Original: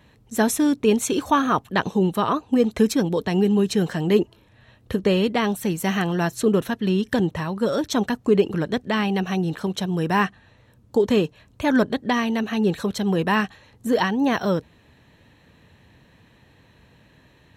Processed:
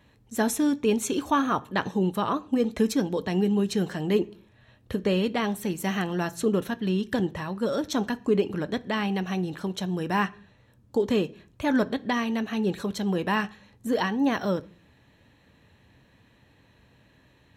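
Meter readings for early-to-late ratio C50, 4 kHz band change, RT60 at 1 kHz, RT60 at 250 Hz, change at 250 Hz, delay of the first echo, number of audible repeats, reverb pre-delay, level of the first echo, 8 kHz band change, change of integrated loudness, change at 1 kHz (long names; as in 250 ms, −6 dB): 22.0 dB, −5.0 dB, 0.35 s, 0.60 s, −4.5 dB, no echo audible, no echo audible, 3 ms, no echo audible, −5.0 dB, −5.0 dB, −5.0 dB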